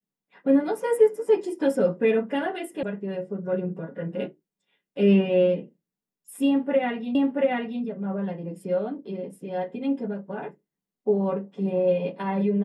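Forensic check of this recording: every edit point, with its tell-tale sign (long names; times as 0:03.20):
0:02.83: cut off before it has died away
0:07.15: the same again, the last 0.68 s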